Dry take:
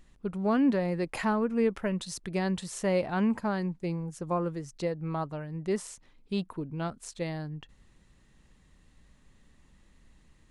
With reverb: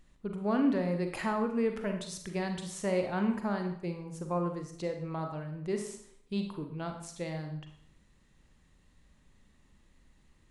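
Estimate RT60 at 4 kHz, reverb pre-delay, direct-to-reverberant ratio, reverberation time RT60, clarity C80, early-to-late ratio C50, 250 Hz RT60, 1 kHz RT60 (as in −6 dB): 0.55 s, 35 ms, 4.5 dB, 0.65 s, 10.0 dB, 6.5 dB, 0.70 s, 0.60 s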